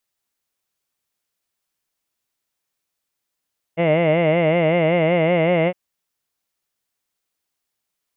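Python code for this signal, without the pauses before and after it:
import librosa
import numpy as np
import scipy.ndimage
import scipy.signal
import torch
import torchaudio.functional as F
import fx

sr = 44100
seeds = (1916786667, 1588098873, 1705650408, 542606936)

y = fx.formant_vowel(sr, seeds[0], length_s=1.96, hz=161.0, glide_st=1.0, vibrato_hz=5.3, vibrato_st=1.1, f1_hz=590.0, f2_hz=2100.0, f3_hz=2800.0)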